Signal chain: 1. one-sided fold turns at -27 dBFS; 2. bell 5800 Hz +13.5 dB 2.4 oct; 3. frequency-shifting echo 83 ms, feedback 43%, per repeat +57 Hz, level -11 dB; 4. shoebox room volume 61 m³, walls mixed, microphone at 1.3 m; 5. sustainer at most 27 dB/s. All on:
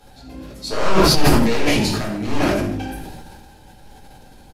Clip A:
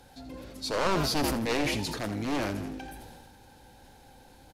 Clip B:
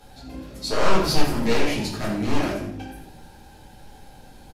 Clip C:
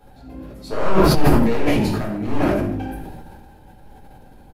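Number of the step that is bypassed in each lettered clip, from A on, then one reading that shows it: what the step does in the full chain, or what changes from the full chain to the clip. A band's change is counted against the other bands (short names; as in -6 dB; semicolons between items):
4, momentary loudness spread change -2 LU; 5, momentary loudness spread change -2 LU; 2, 4 kHz band -8.5 dB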